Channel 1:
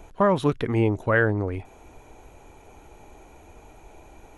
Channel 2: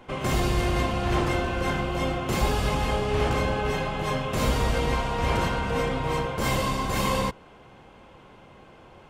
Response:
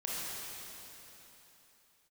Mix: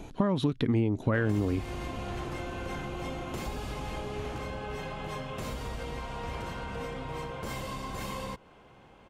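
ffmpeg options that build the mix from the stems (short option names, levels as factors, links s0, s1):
-filter_complex "[0:a]equalizer=f=125:t=o:w=1:g=7,equalizer=f=250:t=o:w=1:g=11,equalizer=f=4000:t=o:w=1:g=9,acompressor=threshold=0.141:ratio=3,volume=0.944[s0];[1:a]acompressor=threshold=0.0398:ratio=6,adelay=1050,volume=0.531[s1];[s0][s1]amix=inputs=2:normalize=0,acompressor=threshold=0.0501:ratio=2.5"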